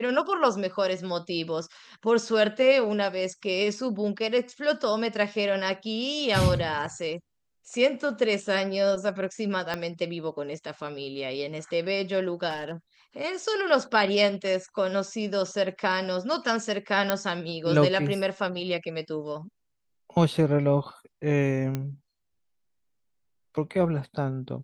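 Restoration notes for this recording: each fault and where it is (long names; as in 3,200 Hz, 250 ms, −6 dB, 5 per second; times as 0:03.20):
0:09.74: click −15 dBFS
0:12.49–0:12.72: clipping −27.5 dBFS
0:17.10: click −8 dBFS
0:21.75: click −16 dBFS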